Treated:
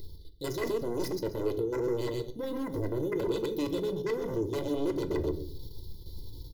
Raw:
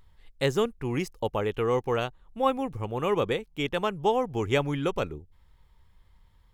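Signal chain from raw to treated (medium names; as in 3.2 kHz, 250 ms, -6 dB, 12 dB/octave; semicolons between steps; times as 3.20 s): elliptic band-stop 700–4100 Hz, stop band 40 dB; feedback delay 128 ms, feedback 20%, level -9.5 dB; level held to a coarse grid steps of 12 dB; tilt EQ +2 dB/octave; reverse; compression 6:1, threshold -52 dBFS, peak gain reduction 24 dB; reverse; static phaser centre 2.4 kHz, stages 6; sine folder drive 15 dB, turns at -42 dBFS; comb 2 ms, depth 63%; small resonant body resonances 310/2000 Hz, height 17 dB, ringing for 35 ms; on a send at -8.5 dB: reverberation, pre-delay 7 ms; on the sum: trim +5.5 dB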